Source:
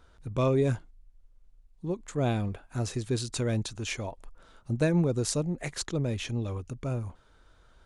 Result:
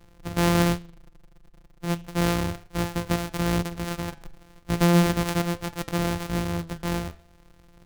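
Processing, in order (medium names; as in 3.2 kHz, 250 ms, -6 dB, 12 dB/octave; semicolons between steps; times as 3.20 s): sorted samples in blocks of 256 samples; flange 0.35 Hz, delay 9.2 ms, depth 4.2 ms, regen +85%; trim +8.5 dB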